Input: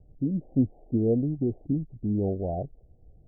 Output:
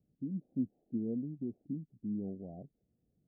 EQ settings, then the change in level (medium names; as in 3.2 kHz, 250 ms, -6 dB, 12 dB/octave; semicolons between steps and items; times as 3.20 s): band-pass filter 210 Hz, Q 2.3; tilt EQ +2 dB/octave; -3.5 dB